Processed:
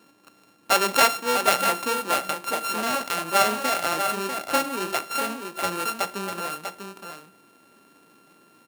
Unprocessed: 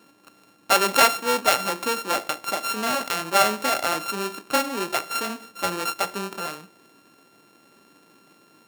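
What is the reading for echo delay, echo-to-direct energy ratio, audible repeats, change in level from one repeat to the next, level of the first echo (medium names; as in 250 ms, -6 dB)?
645 ms, -7.0 dB, 1, no regular repeats, -7.0 dB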